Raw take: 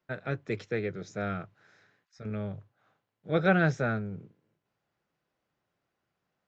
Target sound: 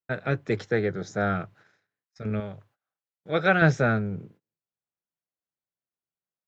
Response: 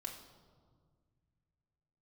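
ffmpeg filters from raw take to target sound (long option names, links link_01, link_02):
-filter_complex "[0:a]asettb=1/sr,asplit=3[link_01][link_02][link_03];[link_01]atrim=end=0.514[link_04];[link_02]atrim=start=0.51:end=1.36,asetpts=PTS-STARTPTS,afade=type=in:duration=0.004:curve=qsin,afade=type=out:start_time=0.846:duration=0.004:curve=qsin,equalizer=frequency=800:width_type=o:width=0.33:gain=6,equalizer=frequency=1600:width_type=o:width=0.33:gain=4,equalizer=frequency=2500:width_type=o:width=0.33:gain=-9[link_05];[link_03]atrim=start=1.356[link_06];[link_04][link_05]acrossfade=duration=0.004:curve1=hsin:curve2=qsin[link_07];[link_07][link_06]acrossfade=duration=0.004:curve1=qsin:curve2=hsin,agate=range=-27dB:threshold=-59dB:ratio=16:detection=peak,asettb=1/sr,asplit=3[link_08][link_09][link_10];[link_08]atrim=end=2.404[link_11];[link_09]atrim=start=2.4:end=3.62,asetpts=PTS-STARTPTS,afade=type=in:duration=0.004:curve=qsin,afade=type=out:start_time=1.216:duration=0.004:curve=qsin,lowshelf=frequency=460:gain=-10[link_12];[link_10]atrim=start=3.616[link_13];[link_11][link_12]acrossfade=duration=0.004:curve1=hsin:curve2=qsin[link_14];[link_14][link_13]acrossfade=duration=0.004:curve1=qsin:curve2=hsin,volume=6.5dB"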